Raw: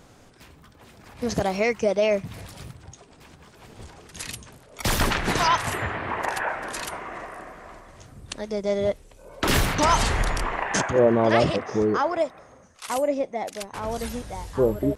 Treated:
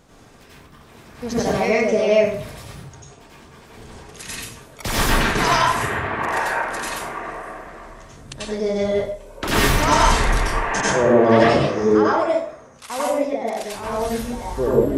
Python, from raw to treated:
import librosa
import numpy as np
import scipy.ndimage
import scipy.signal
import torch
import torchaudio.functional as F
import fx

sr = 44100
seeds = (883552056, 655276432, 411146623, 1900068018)

y = fx.rev_plate(x, sr, seeds[0], rt60_s=0.54, hf_ratio=0.75, predelay_ms=80, drr_db=-7.0)
y = y * librosa.db_to_amplitude(-2.5)